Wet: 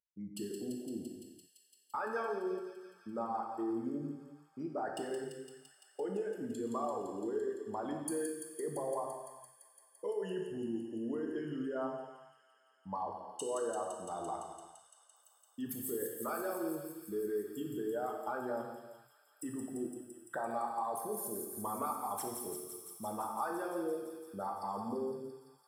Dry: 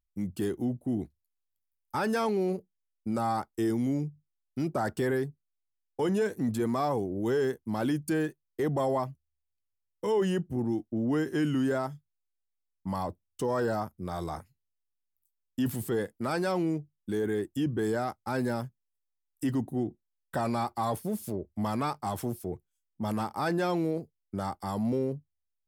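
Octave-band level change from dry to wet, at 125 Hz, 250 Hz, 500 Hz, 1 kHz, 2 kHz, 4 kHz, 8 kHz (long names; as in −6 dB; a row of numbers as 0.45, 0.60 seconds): −18.0, −10.5, −7.0, −5.0, −9.5, −10.5, +1.5 decibels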